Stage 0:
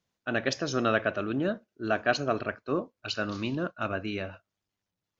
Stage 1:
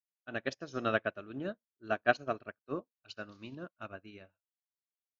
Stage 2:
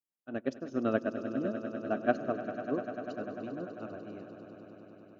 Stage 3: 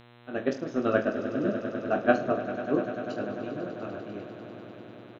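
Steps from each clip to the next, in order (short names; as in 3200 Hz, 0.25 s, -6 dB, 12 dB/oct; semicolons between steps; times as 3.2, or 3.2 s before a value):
upward expander 2.5:1, over -46 dBFS
graphic EQ 250/500/2000/4000 Hz +10/+4/-5/-8 dB; on a send: swelling echo 99 ms, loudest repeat 5, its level -14 dB; on the sum: gain -3 dB
reverse bouncing-ball echo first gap 20 ms, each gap 1.2×, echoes 5; buzz 120 Hz, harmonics 34, -55 dBFS -4 dB/oct; harmonic-percussive split percussive +7 dB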